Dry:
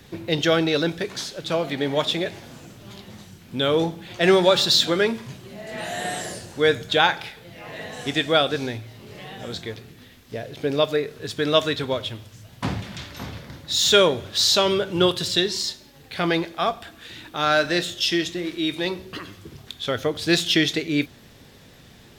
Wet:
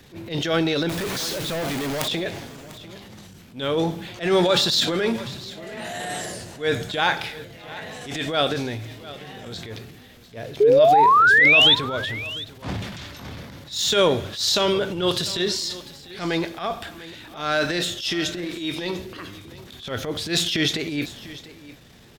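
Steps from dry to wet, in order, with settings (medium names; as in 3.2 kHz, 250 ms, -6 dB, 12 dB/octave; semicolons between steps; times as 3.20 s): transient shaper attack -12 dB, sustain +6 dB; 0.89–2.08 s: companded quantiser 2-bit; 10.60–11.75 s: painted sound rise 400–3700 Hz -13 dBFS; on a send: delay 697 ms -17.5 dB; on the sum: trim -1 dB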